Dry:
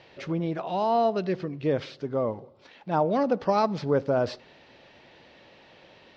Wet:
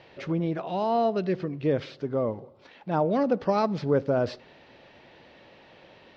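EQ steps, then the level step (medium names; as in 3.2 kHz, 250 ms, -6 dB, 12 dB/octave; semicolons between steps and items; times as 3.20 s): treble shelf 3.9 kHz -6.5 dB; dynamic bell 900 Hz, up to -4 dB, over -37 dBFS, Q 1.2; +1.5 dB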